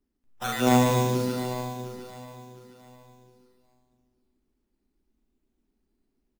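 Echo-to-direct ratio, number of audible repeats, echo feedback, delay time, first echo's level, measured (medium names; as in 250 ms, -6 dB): -1.0 dB, 9, no regular repeats, 146 ms, -4.0 dB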